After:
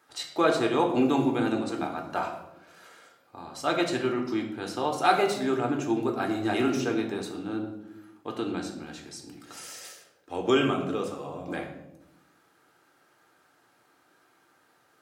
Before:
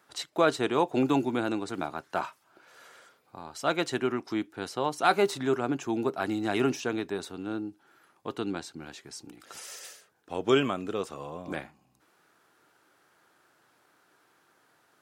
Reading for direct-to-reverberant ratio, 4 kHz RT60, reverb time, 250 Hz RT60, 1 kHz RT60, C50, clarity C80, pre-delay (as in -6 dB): 1.5 dB, 0.55 s, 0.90 s, 1.3 s, 0.70 s, 7.0 dB, 9.5 dB, 3 ms